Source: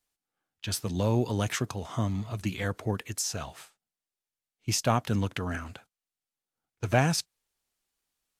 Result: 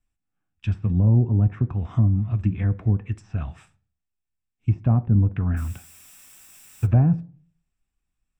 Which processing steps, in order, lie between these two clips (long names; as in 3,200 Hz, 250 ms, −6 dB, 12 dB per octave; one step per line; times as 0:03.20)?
treble cut that deepens with the level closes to 720 Hz, closed at −25 dBFS
RIAA equalisation playback
0:05.56–0:06.85: background noise white −51 dBFS
convolution reverb RT60 0.45 s, pre-delay 3 ms, DRR 12.5 dB